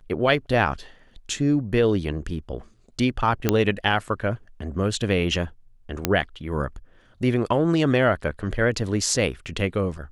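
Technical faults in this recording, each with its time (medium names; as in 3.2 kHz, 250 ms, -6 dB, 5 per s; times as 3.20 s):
3.49 s: pop -4 dBFS
6.05 s: pop -4 dBFS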